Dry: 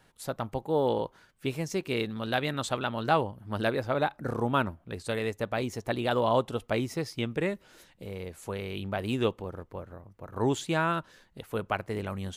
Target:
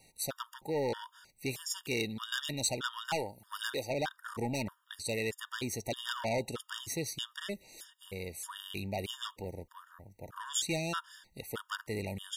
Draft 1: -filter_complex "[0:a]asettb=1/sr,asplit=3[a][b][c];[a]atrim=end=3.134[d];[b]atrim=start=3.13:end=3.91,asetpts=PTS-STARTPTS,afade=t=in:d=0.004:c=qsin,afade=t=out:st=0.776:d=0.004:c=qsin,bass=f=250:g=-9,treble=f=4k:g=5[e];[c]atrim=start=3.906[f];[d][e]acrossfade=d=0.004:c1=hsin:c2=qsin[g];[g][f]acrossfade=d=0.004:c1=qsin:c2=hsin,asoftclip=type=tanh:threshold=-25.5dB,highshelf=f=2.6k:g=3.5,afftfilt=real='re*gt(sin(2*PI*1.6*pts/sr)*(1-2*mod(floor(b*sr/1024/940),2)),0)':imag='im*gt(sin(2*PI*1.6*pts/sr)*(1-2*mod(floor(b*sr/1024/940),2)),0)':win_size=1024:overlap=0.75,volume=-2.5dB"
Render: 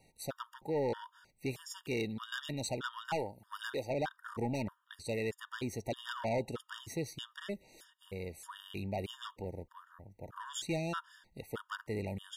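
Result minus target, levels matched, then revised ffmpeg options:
4000 Hz band -4.5 dB
-filter_complex "[0:a]asettb=1/sr,asplit=3[a][b][c];[a]atrim=end=3.134[d];[b]atrim=start=3.13:end=3.91,asetpts=PTS-STARTPTS,afade=t=in:d=0.004:c=qsin,afade=t=out:st=0.776:d=0.004:c=qsin,bass=f=250:g=-9,treble=f=4k:g=5[e];[c]atrim=start=3.906[f];[d][e]acrossfade=d=0.004:c1=hsin:c2=qsin[g];[g][f]acrossfade=d=0.004:c1=qsin:c2=hsin,asoftclip=type=tanh:threshold=-25.5dB,highshelf=f=2.6k:g=14.5,afftfilt=real='re*gt(sin(2*PI*1.6*pts/sr)*(1-2*mod(floor(b*sr/1024/940),2)),0)':imag='im*gt(sin(2*PI*1.6*pts/sr)*(1-2*mod(floor(b*sr/1024/940),2)),0)':win_size=1024:overlap=0.75,volume=-2.5dB"

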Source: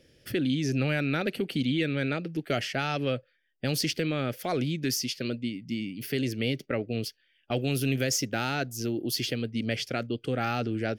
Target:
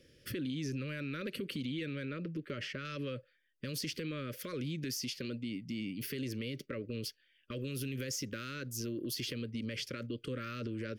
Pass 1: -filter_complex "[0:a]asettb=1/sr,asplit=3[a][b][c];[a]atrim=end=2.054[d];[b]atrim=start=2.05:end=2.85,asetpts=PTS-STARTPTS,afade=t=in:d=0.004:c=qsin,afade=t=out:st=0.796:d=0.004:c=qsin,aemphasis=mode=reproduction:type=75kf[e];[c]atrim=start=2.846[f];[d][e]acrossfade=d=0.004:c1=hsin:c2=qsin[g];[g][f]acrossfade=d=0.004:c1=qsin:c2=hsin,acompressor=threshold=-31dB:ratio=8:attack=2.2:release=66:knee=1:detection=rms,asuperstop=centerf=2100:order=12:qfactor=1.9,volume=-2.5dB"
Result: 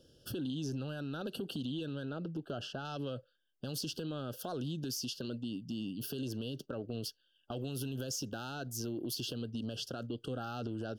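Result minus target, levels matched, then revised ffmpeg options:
2000 Hz band -5.5 dB
-filter_complex "[0:a]asettb=1/sr,asplit=3[a][b][c];[a]atrim=end=2.054[d];[b]atrim=start=2.05:end=2.85,asetpts=PTS-STARTPTS,afade=t=in:d=0.004:c=qsin,afade=t=out:st=0.796:d=0.004:c=qsin,aemphasis=mode=reproduction:type=75kf[e];[c]atrim=start=2.846[f];[d][e]acrossfade=d=0.004:c1=hsin:c2=qsin[g];[g][f]acrossfade=d=0.004:c1=qsin:c2=hsin,acompressor=threshold=-31dB:ratio=8:attack=2.2:release=66:knee=1:detection=rms,asuperstop=centerf=780:order=12:qfactor=1.9,volume=-2.5dB"

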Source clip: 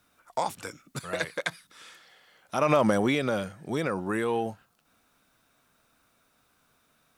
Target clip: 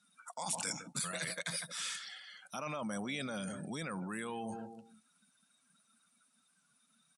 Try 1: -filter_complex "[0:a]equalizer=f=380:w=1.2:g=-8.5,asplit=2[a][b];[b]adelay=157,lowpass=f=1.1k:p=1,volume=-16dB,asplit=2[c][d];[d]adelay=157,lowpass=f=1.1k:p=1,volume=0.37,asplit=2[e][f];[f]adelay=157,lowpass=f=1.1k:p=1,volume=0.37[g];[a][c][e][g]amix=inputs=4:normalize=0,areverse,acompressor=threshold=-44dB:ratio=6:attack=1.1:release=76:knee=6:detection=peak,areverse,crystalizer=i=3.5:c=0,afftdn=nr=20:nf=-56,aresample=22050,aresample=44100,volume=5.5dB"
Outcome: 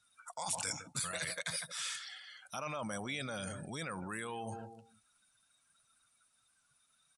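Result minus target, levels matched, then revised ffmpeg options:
250 Hz band -4.0 dB
-filter_complex "[0:a]highpass=f=190:t=q:w=2,equalizer=f=380:w=1.2:g=-8.5,asplit=2[a][b];[b]adelay=157,lowpass=f=1.1k:p=1,volume=-16dB,asplit=2[c][d];[d]adelay=157,lowpass=f=1.1k:p=1,volume=0.37,asplit=2[e][f];[f]adelay=157,lowpass=f=1.1k:p=1,volume=0.37[g];[a][c][e][g]amix=inputs=4:normalize=0,areverse,acompressor=threshold=-44dB:ratio=6:attack=1.1:release=76:knee=6:detection=peak,areverse,crystalizer=i=3.5:c=0,afftdn=nr=20:nf=-56,aresample=22050,aresample=44100,volume=5.5dB"

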